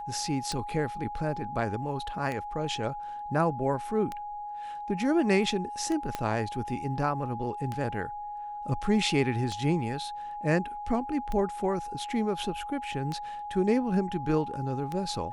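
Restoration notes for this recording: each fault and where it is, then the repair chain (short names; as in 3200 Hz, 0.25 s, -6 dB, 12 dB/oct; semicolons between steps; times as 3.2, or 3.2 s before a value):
tick 33 1/3 rpm
tone 830 Hz -35 dBFS
6.15 pop -16 dBFS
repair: de-click; notch 830 Hz, Q 30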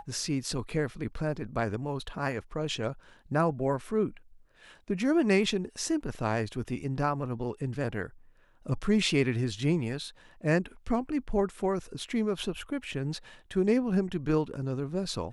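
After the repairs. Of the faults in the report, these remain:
6.15 pop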